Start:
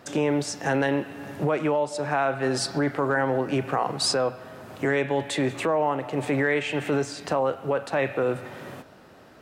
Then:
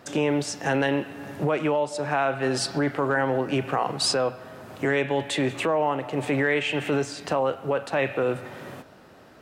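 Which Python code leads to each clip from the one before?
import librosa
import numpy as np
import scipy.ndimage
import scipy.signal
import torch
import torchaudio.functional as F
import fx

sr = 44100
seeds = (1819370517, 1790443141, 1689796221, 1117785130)

y = fx.dynamic_eq(x, sr, hz=2900.0, q=2.7, threshold_db=-46.0, ratio=4.0, max_db=5)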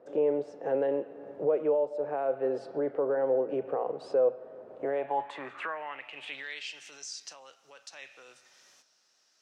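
y = fx.filter_sweep_bandpass(x, sr, from_hz=490.0, to_hz=5800.0, start_s=4.74, end_s=6.8, q=4.3)
y = F.gain(torch.from_numpy(y), 3.0).numpy()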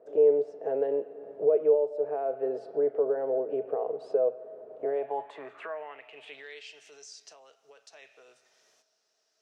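y = fx.small_body(x, sr, hz=(440.0, 640.0), ring_ms=55, db=14)
y = F.gain(torch.from_numpy(y), -7.0).numpy()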